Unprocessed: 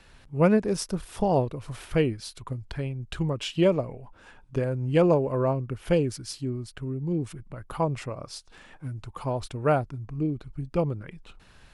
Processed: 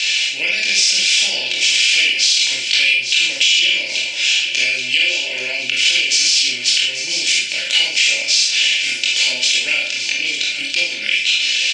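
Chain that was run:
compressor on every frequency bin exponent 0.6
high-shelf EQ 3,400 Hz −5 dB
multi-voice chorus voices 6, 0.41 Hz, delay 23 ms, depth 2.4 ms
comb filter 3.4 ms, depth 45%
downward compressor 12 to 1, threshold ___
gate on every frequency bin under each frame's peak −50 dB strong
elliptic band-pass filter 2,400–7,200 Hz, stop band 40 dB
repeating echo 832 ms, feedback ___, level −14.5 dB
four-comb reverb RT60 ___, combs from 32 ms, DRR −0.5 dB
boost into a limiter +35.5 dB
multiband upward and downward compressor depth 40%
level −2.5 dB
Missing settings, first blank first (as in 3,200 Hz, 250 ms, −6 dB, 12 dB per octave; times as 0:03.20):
−26 dBFS, 53%, 0.41 s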